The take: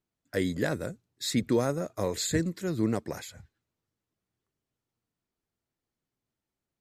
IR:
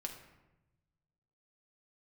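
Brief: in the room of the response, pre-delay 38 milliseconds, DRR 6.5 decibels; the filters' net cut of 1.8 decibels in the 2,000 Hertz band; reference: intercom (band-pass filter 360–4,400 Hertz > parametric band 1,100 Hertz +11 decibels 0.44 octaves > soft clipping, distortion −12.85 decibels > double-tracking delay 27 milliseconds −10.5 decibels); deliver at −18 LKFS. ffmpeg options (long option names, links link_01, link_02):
-filter_complex "[0:a]equalizer=frequency=2000:width_type=o:gain=-4,asplit=2[link_01][link_02];[1:a]atrim=start_sample=2205,adelay=38[link_03];[link_02][link_03]afir=irnorm=-1:irlink=0,volume=-5dB[link_04];[link_01][link_04]amix=inputs=2:normalize=0,highpass=360,lowpass=4400,equalizer=frequency=1100:width_type=o:width=0.44:gain=11,asoftclip=threshold=-24.5dB,asplit=2[link_05][link_06];[link_06]adelay=27,volume=-10.5dB[link_07];[link_05][link_07]amix=inputs=2:normalize=0,volume=16.5dB"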